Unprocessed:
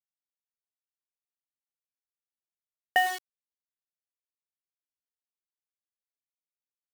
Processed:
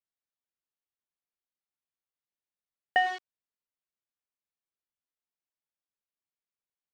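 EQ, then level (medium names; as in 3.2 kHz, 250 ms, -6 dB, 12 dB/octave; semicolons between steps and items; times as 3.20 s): distance through air 170 m; 0.0 dB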